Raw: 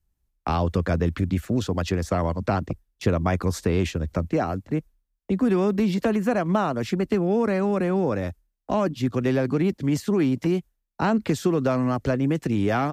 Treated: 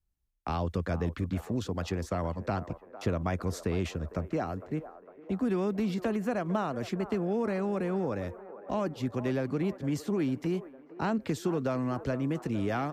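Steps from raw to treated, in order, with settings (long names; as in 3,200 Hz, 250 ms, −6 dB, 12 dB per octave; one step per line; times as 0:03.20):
delay with a band-pass on its return 455 ms, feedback 61%, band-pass 760 Hz, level −13 dB
level −8 dB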